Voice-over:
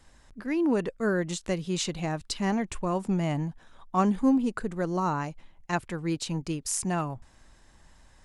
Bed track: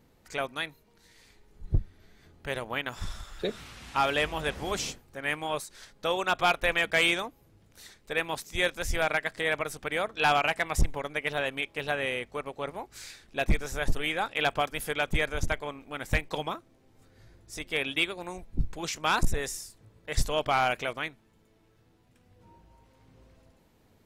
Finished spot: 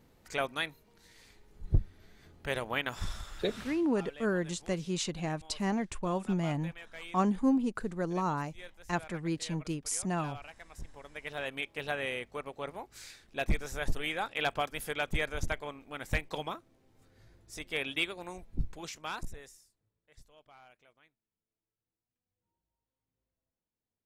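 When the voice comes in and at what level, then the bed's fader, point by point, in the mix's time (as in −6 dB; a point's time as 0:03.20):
3.20 s, −4.0 dB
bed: 0:03.70 −0.5 dB
0:03.92 −22.5 dB
0:10.70 −22.5 dB
0:11.55 −4.5 dB
0:18.62 −4.5 dB
0:20.25 −32 dB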